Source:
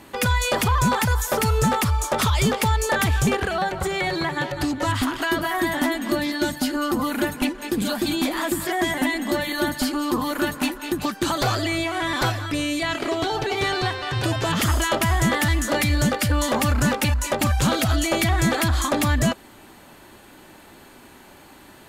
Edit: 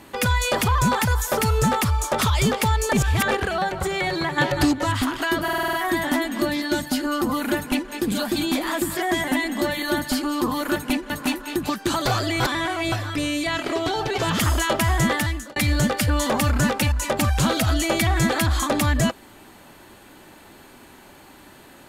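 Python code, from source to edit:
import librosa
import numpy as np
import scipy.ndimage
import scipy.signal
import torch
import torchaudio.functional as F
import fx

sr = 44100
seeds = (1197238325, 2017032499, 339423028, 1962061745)

y = fx.edit(x, sr, fx.reverse_span(start_s=2.93, length_s=0.38),
    fx.clip_gain(start_s=4.38, length_s=0.35, db=5.5),
    fx.stutter(start_s=5.43, slice_s=0.05, count=7),
    fx.duplicate(start_s=7.28, length_s=0.34, to_s=10.46),
    fx.reverse_span(start_s=11.76, length_s=0.52),
    fx.cut(start_s=13.54, length_s=0.86),
    fx.fade_out_span(start_s=15.34, length_s=0.44), tone=tone)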